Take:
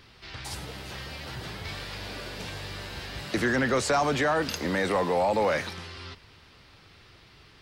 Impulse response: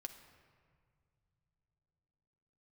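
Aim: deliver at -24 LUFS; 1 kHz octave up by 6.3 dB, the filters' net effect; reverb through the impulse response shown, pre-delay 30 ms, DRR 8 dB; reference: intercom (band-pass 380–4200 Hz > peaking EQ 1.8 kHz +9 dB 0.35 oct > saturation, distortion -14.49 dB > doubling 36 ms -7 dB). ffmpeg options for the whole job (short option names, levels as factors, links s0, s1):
-filter_complex "[0:a]equalizer=f=1000:t=o:g=8,asplit=2[s0][s1];[1:a]atrim=start_sample=2205,adelay=30[s2];[s1][s2]afir=irnorm=-1:irlink=0,volume=0.668[s3];[s0][s3]amix=inputs=2:normalize=0,highpass=380,lowpass=4200,equalizer=f=1800:t=o:w=0.35:g=9,asoftclip=threshold=0.168,asplit=2[s4][s5];[s5]adelay=36,volume=0.447[s6];[s4][s6]amix=inputs=2:normalize=0,volume=1.19"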